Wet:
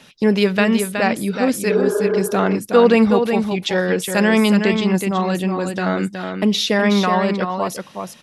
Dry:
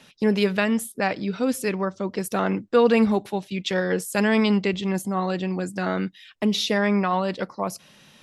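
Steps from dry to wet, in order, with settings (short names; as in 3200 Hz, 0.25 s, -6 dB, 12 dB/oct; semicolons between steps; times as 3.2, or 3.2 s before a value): spectral repair 1.72–2.17, 250–1700 Hz before; on a send: echo 0.37 s -6.5 dB; on the sum: gain +5 dB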